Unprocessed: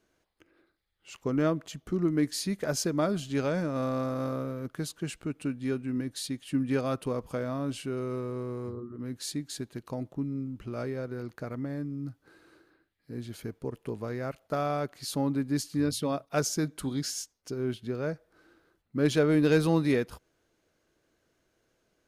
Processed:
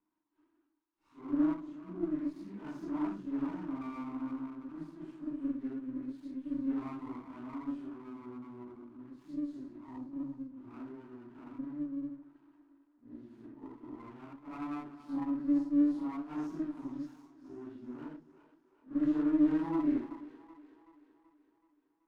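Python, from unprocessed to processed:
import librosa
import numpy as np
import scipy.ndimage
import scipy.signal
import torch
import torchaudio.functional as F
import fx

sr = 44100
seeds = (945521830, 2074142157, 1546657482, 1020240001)

p1 = fx.phase_scramble(x, sr, seeds[0], window_ms=200)
p2 = fx.double_bandpass(p1, sr, hz=530.0, octaves=1.7)
p3 = p2 + fx.echo_split(p2, sr, split_hz=380.0, low_ms=115, high_ms=379, feedback_pct=52, wet_db=-13.5, dry=0)
y = fx.running_max(p3, sr, window=9)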